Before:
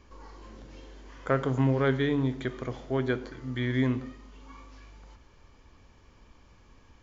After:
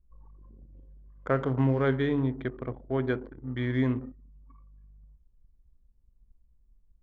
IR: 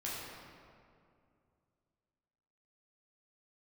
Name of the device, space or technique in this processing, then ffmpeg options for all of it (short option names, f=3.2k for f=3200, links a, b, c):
behind a face mask: -filter_complex "[0:a]asettb=1/sr,asplit=3[a][b][c];[a]atrim=end=2.204[d];[b]atrim=start=2.2:end=3.01,asetpts=PTS-STARTPTS,afade=t=in:d=0.004:c=qsin,afade=t=out:st=0.806:d=0.004:c=qsin,lowpass=5.1k[e];[c]atrim=start=3.006[f];[d][e]acrossfade=d=0.004:c1=hsin:c2=qsin[g];[g][f]acrossfade=d=0.004:c1=qsin:c2=hsin,highshelf=f=3.3k:g=-8,anlmdn=0.631"